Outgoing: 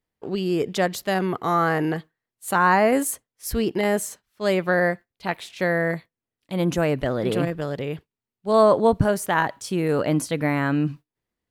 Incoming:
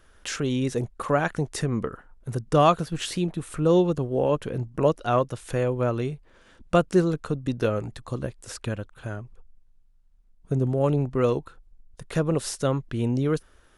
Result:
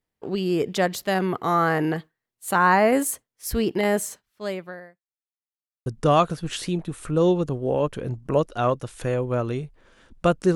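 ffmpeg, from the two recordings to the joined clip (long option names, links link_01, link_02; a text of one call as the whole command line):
ffmpeg -i cue0.wav -i cue1.wav -filter_complex "[0:a]apad=whole_dur=10.55,atrim=end=10.55,asplit=2[link_01][link_02];[link_01]atrim=end=5.07,asetpts=PTS-STARTPTS,afade=type=out:start_time=4.17:duration=0.9:curve=qua[link_03];[link_02]atrim=start=5.07:end=5.86,asetpts=PTS-STARTPTS,volume=0[link_04];[1:a]atrim=start=2.35:end=7.04,asetpts=PTS-STARTPTS,afade=type=in:duration=0.004:curve=hsin[link_05];[link_03][link_04][link_05]concat=n=3:v=0:a=1" out.wav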